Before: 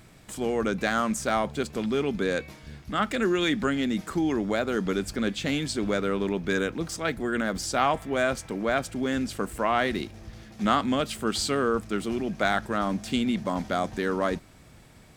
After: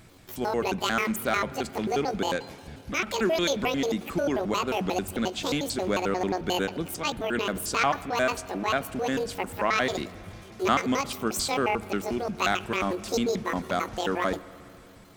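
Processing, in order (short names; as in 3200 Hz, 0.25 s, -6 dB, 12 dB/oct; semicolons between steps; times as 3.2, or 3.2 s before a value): trilling pitch shifter +10.5 st, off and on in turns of 89 ms; spring tank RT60 3 s, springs 36/59 ms, chirp 70 ms, DRR 17 dB; ending taper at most 220 dB/s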